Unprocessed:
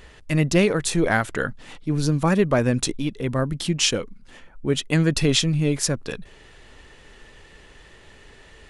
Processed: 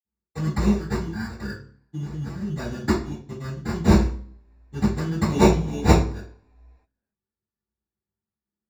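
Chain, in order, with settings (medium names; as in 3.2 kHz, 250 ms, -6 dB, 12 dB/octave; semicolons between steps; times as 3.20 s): pre-emphasis filter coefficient 0.9; band-stop 450 Hz, Q 12; gate -43 dBFS, range -42 dB; 0.72–1.35 s: static phaser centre 2 kHz, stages 6; 1.97–2.50 s: compressor with a negative ratio -44 dBFS, ratio -1; 5.26–5.92 s: rippled EQ curve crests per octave 1.6, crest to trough 18 dB; sample-and-hold 14×; reverberation RT60 0.45 s, pre-delay 47 ms, DRR -60 dB; trim -4.5 dB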